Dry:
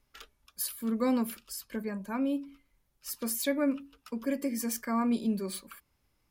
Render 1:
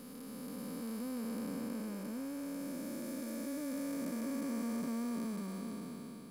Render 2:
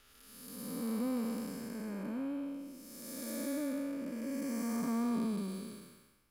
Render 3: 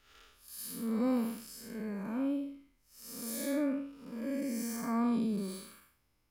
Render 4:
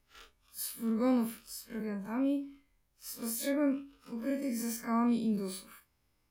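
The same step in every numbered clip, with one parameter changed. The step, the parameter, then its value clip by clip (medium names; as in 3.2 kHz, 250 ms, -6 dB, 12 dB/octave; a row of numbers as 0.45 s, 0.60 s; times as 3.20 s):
spectral blur, width: 1660 ms, 602 ms, 224 ms, 81 ms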